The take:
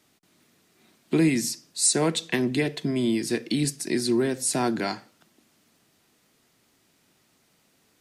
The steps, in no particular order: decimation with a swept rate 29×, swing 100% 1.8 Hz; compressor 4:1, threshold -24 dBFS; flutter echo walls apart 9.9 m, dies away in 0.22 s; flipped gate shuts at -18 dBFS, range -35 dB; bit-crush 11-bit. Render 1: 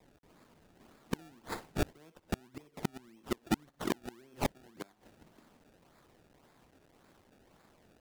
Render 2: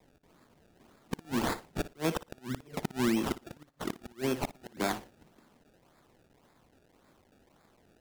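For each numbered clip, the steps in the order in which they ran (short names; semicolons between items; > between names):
decimation with a swept rate > flutter echo > bit-crush > flipped gate > compressor; bit-crush > compressor > flipped gate > decimation with a swept rate > flutter echo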